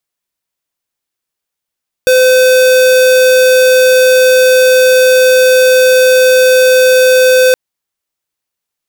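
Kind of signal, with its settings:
tone square 511 Hz −6.5 dBFS 5.47 s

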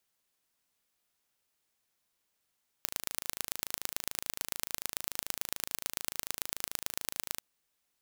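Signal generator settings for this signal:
impulse train 26.9 per second, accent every 3, −4 dBFS 4.55 s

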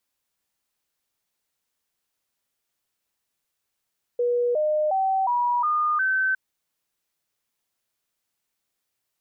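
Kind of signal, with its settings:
stepped sweep 484 Hz up, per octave 3, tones 6, 0.36 s, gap 0.00 s −19.5 dBFS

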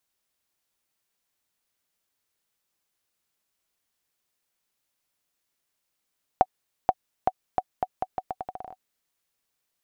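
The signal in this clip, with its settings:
bouncing ball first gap 0.48 s, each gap 0.8, 748 Hz, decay 46 ms −5.5 dBFS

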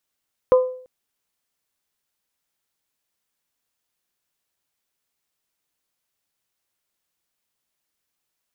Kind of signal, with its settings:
struck glass bell, length 0.34 s, lowest mode 509 Hz, modes 3, decay 0.54 s, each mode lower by 11 dB, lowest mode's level −8 dB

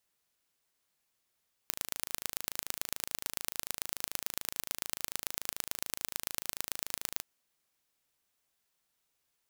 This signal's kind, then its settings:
impulse train 26.9 per second, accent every 3, −4.5 dBFS 5.51 s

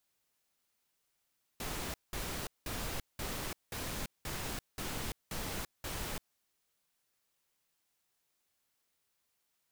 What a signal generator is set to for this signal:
noise bursts pink, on 0.34 s, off 0.19 s, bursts 9, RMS −39 dBFS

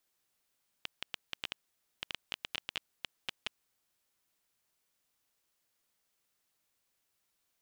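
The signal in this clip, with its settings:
Geiger counter clicks 8.8 per second −18 dBFS 2.85 s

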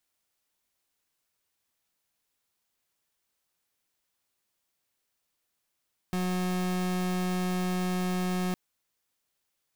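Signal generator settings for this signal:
pulse wave 182 Hz, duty 37% −29 dBFS 2.41 s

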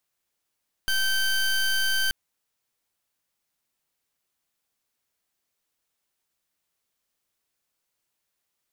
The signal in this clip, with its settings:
pulse wave 1,550 Hz, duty 20% −23.5 dBFS 1.23 s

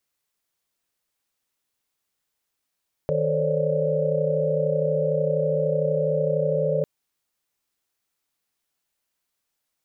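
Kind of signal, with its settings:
held notes D#3/A4/C5/C#5/D5 sine, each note −26.5 dBFS 3.75 s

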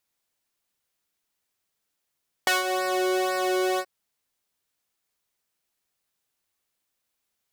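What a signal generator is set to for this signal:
subtractive patch with pulse-width modulation F#4, oscillator 2 sine, interval +7 semitones, oscillator 2 level −7 dB, sub −25.5 dB, filter highpass, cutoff 350 Hz, Q 1, filter envelope 2 octaves, filter decay 0.31 s, filter sustain 5%, attack 2.6 ms, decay 0.16 s, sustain −11.5 dB, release 0.06 s, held 1.32 s, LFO 2 Hz, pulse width 27%, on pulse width 16%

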